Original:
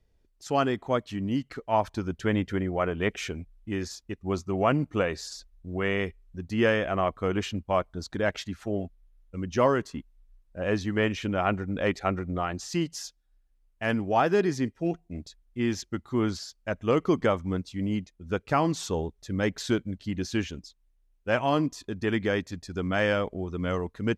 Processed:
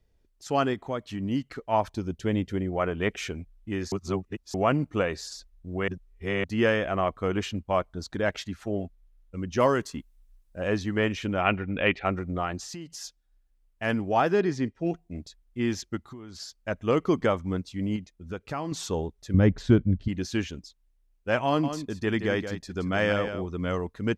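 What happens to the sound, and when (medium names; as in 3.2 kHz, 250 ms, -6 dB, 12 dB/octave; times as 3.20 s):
0.73–1.23 s: compression 2:1, threshold -29 dBFS
1.91–2.73 s: peaking EQ 1.4 kHz -8.5 dB 1.4 oct
3.92–4.54 s: reverse
5.88–6.44 s: reverse
9.60–10.68 s: treble shelf 4.6 kHz +9 dB
11.41–12.06 s: resonant low-pass 2.7 kHz, resonance Q 3.5
12.62–13.02 s: compression, threshold -36 dBFS
14.32–14.87 s: distance through air 63 m
15.97–16.40 s: compression 16:1, threshold -38 dBFS
17.96–18.72 s: compression 2:1, threshold -34 dBFS
19.34–20.08 s: RIAA curve playback
21.46–23.49 s: delay 173 ms -9.5 dB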